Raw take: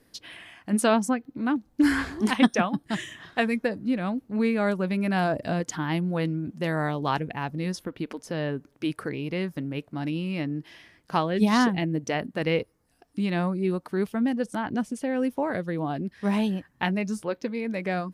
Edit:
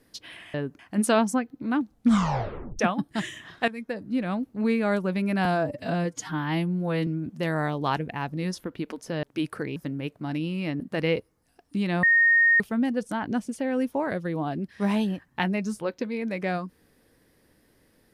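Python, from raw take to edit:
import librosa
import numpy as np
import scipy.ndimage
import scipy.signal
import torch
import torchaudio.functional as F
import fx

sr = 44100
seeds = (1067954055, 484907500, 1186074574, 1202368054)

y = fx.edit(x, sr, fx.tape_stop(start_s=1.66, length_s=0.88),
    fx.fade_in_from(start_s=3.43, length_s=0.56, floor_db=-15.5),
    fx.stretch_span(start_s=5.2, length_s=1.08, factor=1.5),
    fx.move(start_s=8.44, length_s=0.25, to_s=0.54),
    fx.cut(start_s=9.22, length_s=0.26),
    fx.cut(start_s=10.52, length_s=1.71),
    fx.bleep(start_s=13.46, length_s=0.57, hz=1850.0, db=-15.5), tone=tone)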